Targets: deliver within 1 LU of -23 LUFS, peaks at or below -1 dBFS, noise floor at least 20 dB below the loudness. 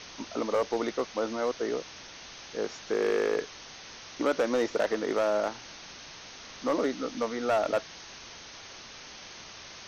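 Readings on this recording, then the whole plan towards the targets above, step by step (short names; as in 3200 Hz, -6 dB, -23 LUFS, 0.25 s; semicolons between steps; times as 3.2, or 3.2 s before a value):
clipped 1.0%; flat tops at -20.0 dBFS; noise floor -47 dBFS; noise floor target -50 dBFS; loudness -30.0 LUFS; peak -20.0 dBFS; loudness target -23.0 LUFS
-> clip repair -20 dBFS; denoiser 6 dB, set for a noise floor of -47 dBFS; gain +7 dB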